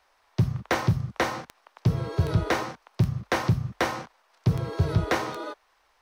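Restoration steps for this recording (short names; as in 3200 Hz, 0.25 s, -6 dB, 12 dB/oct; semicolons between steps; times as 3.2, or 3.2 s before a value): clip repair -14 dBFS; de-click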